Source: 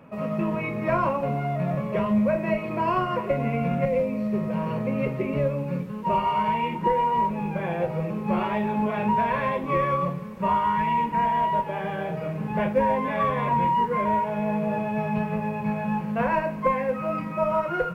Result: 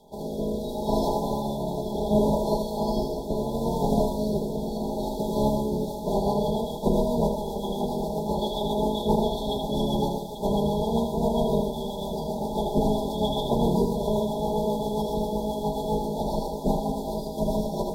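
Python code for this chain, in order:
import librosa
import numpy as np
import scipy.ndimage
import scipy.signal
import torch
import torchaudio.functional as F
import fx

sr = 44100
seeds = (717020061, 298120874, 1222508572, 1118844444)

y = fx.spec_clip(x, sr, under_db=27)
y = y + 0.92 * np.pad(y, (int(4.8 * sr / 1000.0), 0))[:len(y)]
y = fx.rotary_switch(y, sr, hz=0.7, then_hz=7.5, switch_at_s=5.48)
y = fx.brickwall_bandstop(y, sr, low_hz=1000.0, high_hz=3300.0)
y = fx.echo_multitap(y, sr, ms=(79, 839), db=(-5.5, -12.0))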